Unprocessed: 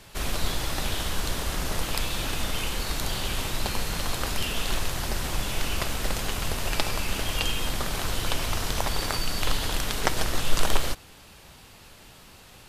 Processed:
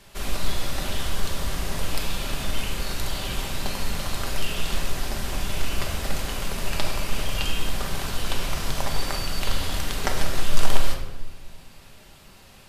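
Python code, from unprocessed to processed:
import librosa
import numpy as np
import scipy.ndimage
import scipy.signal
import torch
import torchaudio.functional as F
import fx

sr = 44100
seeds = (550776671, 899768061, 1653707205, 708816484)

y = fx.room_shoebox(x, sr, seeds[0], volume_m3=680.0, walls='mixed', distance_m=1.2)
y = F.gain(torch.from_numpy(y), -3.0).numpy()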